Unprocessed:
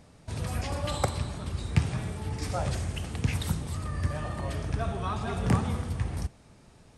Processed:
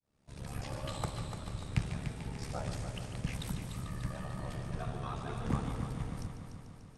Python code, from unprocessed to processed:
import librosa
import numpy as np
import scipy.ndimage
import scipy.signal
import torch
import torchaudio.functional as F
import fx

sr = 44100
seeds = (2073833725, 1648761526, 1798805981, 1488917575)

y = fx.fade_in_head(x, sr, length_s=0.57)
y = y * np.sin(2.0 * np.pi * 35.0 * np.arange(len(y)) / sr)
y = fx.echo_heads(y, sr, ms=147, heads='first and second', feedback_pct=63, wet_db=-11.0)
y = y * 10.0 ** (-6.0 / 20.0)